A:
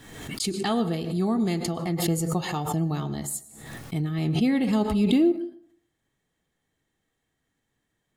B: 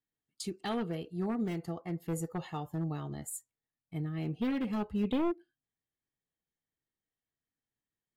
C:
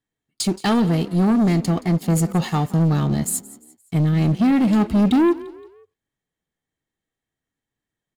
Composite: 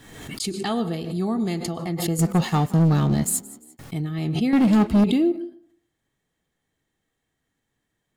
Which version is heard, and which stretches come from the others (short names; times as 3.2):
A
2.19–3.79 from C
4.53–5.04 from C
not used: B